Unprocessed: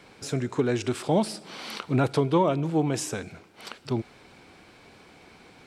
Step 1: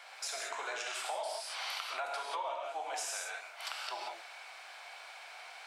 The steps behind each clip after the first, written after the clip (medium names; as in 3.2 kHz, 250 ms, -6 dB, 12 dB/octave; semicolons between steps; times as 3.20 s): Chebyshev high-pass 670 Hz, order 4; gated-style reverb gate 210 ms flat, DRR -1.5 dB; compression 5:1, threshold -38 dBFS, peak gain reduction 14.5 dB; trim +1.5 dB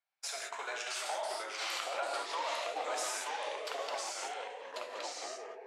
gate -40 dBFS, range -41 dB; ever faster or slower copies 642 ms, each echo -2 st, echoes 3